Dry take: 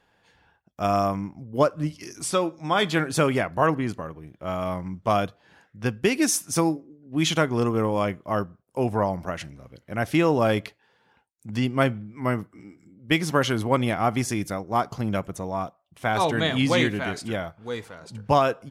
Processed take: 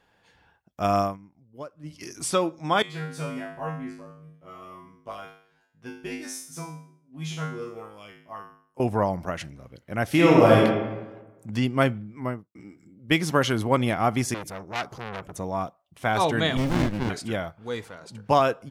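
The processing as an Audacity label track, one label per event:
1.000000	2.010000	dip -18.5 dB, fades 0.18 s
2.820000	8.800000	resonator 52 Hz, decay 0.55 s, harmonics odd, mix 100%
10.070000	10.640000	reverb throw, RT60 1.2 s, DRR -3.5 dB
12.080000	12.550000	studio fade out
14.340000	15.380000	core saturation saturates under 3400 Hz
16.570000	17.100000	running maximum over 65 samples
17.960000	18.400000	HPF 160 Hz 6 dB/oct

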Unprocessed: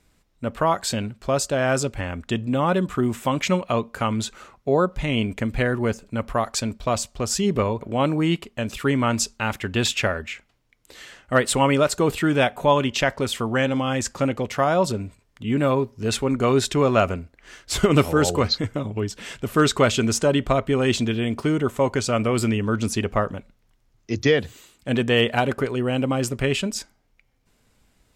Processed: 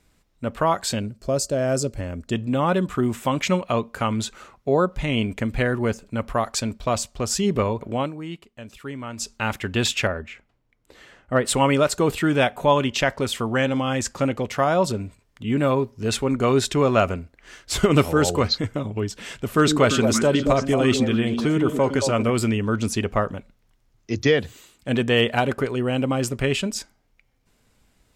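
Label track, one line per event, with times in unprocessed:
0.990000	2.330000	spectral gain 670–4100 Hz -9 dB
7.930000	9.350000	dip -12.5 dB, fades 0.19 s
10.070000	11.450000	high shelf 2100 Hz -12 dB
19.450000	22.300000	delay with a stepping band-pass 0.112 s, band-pass from 230 Hz, each repeat 1.4 oct, level -1 dB

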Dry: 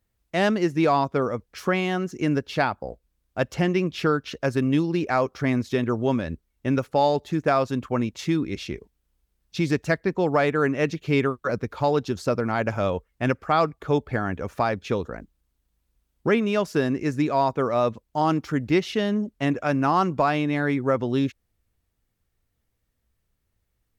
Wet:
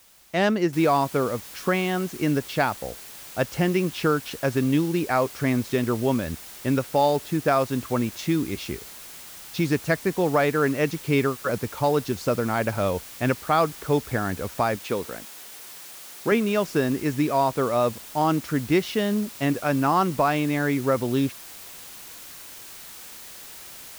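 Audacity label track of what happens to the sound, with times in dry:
0.730000	0.730000	noise floor step -55 dB -42 dB
14.760000	16.320000	HPF 240 Hz 6 dB/oct

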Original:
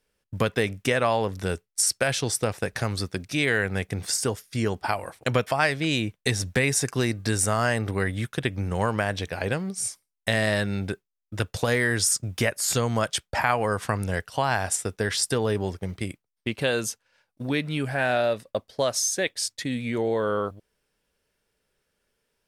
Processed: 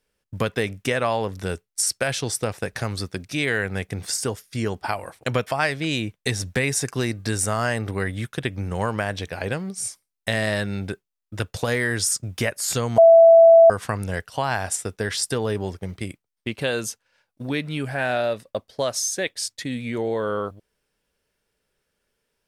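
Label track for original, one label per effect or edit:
12.980000	13.700000	bleep 663 Hz -7 dBFS

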